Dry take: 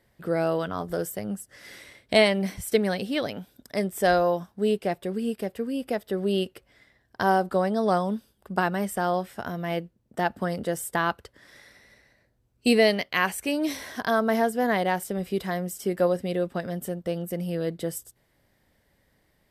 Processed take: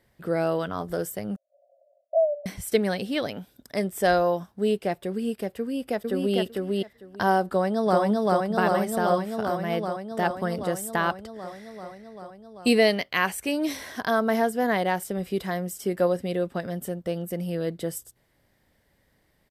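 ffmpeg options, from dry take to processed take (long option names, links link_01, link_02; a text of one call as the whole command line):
ffmpeg -i in.wav -filter_complex "[0:a]asettb=1/sr,asplit=3[link_01][link_02][link_03];[link_01]atrim=end=1.364[link_04];[link_02]atrim=start=1.36:end=2.46,asetpts=PTS-STARTPTS,afade=type=in:duration=0.004:curve=qsin,afade=type=out:start_time=1.096:duration=0.004:curve=qsin,asuperpass=centerf=620:order=12:qfactor=3.6[link_05];[link_03]atrim=start=2.456[link_06];[link_04][link_05]acrossfade=duration=0.004:curve1=hsin:curve2=qsin[link_07];[link_07][link_06]acrossfade=duration=0.004:curve1=qsin:curve2=hsin,asplit=2[link_08][link_09];[link_09]afade=type=in:start_time=5.59:duration=0.01,afade=type=out:start_time=6.37:duration=0.01,aecho=0:1:450|900|1350:0.841395|0.126209|0.0189314[link_10];[link_08][link_10]amix=inputs=2:normalize=0,asplit=2[link_11][link_12];[link_12]afade=type=in:start_time=7.47:duration=0.01,afade=type=out:start_time=8.01:duration=0.01,aecho=0:1:390|780|1170|1560|1950|2340|2730|3120|3510|3900|4290|4680:0.944061|0.755249|0.604199|0.483359|0.386687|0.30935|0.24748|0.197984|0.158387|0.12671|0.101368|0.0810942[link_13];[link_11][link_13]amix=inputs=2:normalize=0" out.wav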